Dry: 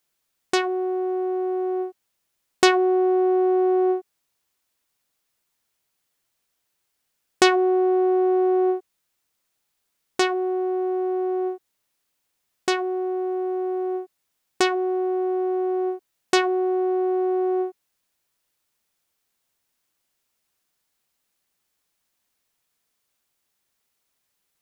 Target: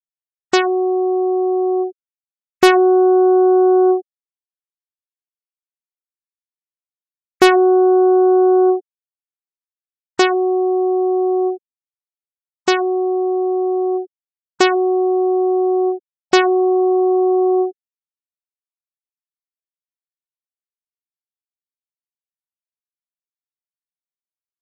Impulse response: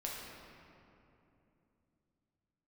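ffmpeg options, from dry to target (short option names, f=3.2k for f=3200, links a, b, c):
-af "aeval=exprs='0.841*sin(PI/2*1.78*val(0)/0.841)':c=same,afftfilt=real='re*gte(hypot(re,im),0.112)':imag='im*gte(hypot(re,im),0.112)':win_size=1024:overlap=0.75,volume=-1dB"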